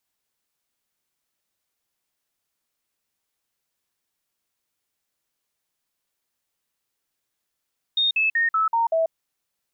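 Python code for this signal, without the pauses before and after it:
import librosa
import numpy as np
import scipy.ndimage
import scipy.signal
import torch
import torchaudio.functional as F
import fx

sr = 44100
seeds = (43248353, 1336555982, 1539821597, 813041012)

y = fx.stepped_sweep(sr, from_hz=3690.0, direction='down', per_octave=2, tones=6, dwell_s=0.14, gap_s=0.05, level_db=-17.5)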